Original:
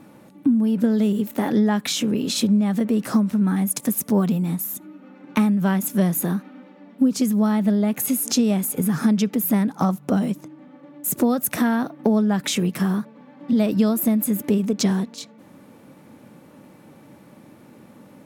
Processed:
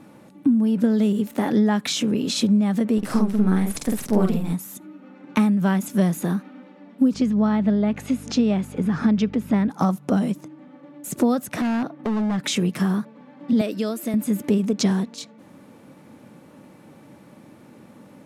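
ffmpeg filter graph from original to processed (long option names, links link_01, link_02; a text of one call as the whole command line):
ffmpeg -i in.wav -filter_complex "[0:a]asettb=1/sr,asplit=3[link_01][link_02][link_03];[link_01]atrim=end=2.984[link_04];[link_02]atrim=start=2.98:end=4.53,asetpts=PTS-STARTPTS,afade=type=in:duration=0.004:curve=qsin,afade=type=out:start_time=1.546:duration=0.004:curve=qsin,aeval=exprs='if(lt(val(0),0),0.447*val(0),val(0))':channel_layout=same,bandreject=frequency=6600:width=26,asplit=2[link_05][link_06];[link_06]adelay=48,volume=-2.5dB[link_07];[link_05][link_07]amix=inputs=2:normalize=0,atrim=end_sample=68355[link_08];[link_03]atrim=start=4.526[link_09];[link_04][link_08]acrossfade=duration=0.004:curve1=hsin:curve2=qsin[link_10];[link_10][link_09]acrossfade=duration=0.004:curve1=qsin:curve2=hsin,asettb=1/sr,asplit=3[link_11][link_12][link_13];[link_11]atrim=end=7.144[link_14];[link_12]atrim=start=7.14:end=9.7,asetpts=PTS-STARTPTS,afade=type=in:duration=0.004:curve=qsin,afade=type=out:start_time=2.556:duration=0.004:curve=qsin,aeval=exprs='val(0)+0.0282*(sin(2*PI*50*n/s)+sin(2*PI*2*50*n/s)/2+sin(2*PI*3*50*n/s)/3+sin(2*PI*4*50*n/s)/4+sin(2*PI*5*50*n/s)/5)':channel_layout=same,highpass=130,lowpass=3700[link_15];[link_13]atrim=start=9.696[link_16];[link_14][link_15]acrossfade=duration=0.004:curve1=hsin:curve2=qsin[link_17];[link_17][link_16]acrossfade=duration=0.004:curve1=qsin:curve2=hsin,asettb=1/sr,asplit=3[link_18][link_19][link_20];[link_18]atrim=end=11.464[link_21];[link_19]atrim=start=11.46:end=12.43,asetpts=PTS-STARTPTS,afade=type=in:duration=0.004:curve=qsin,afade=type=out:start_time=0.966:duration=0.004:curve=qsin,lowpass=frequency=3900:poles=1,asoftclip=type=hard:threshold=-20dB[link_22];[link_20]atrim=start=12.426[link_23];[link_21][link_22]acrossfade=duration=0.004:curve1=hsin:curve2=qsin[link_24];[link_24][link_23]acrossfade=duration=0.004:curve1=qsin:curve2=hsin,asettb=1/sr,asplit=3[link_25][link_26][link_27];[link_25]atrim=end=13.614[link_28];[link_26]atrim=start=13.61:end=14.14,asetpts=PTS-STARTPTS,afade=type=in:duration=0.004:curve=qsin,afade=type=out:start_time=0.526:duration=0.004:curve=qsin,highpass=350,equalizer=frequency=980:width=2.4:gain=-7.5,bandreject=frequency=750:width=7.1[link_29];[link_27]atrim=start=14.136[link_30];[link_28][link_29]acrossfade=duration=0.004:curve1=hsin:curve2=qsin[link_31];[link_31][link_30]acrossfade=duration=0.004:curve1=qsin:curve2=hsin,lowpass=12000,acrossover=split=7900[link_32][link_33];[link_33]acompressor=threshold=-38dB:ratio=4:attack=1:release=60[link_34];[link_32][link_34]amix=inputs=2:normalize=0" out.wav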